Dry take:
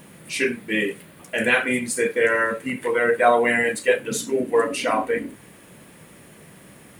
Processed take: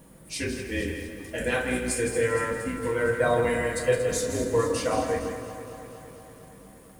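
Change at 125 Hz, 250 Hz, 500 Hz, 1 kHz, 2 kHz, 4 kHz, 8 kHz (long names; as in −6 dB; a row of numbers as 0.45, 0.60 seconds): +6.5, −4.0, −4.0, −7.5, −9.0, −5.5, −1.5 decibels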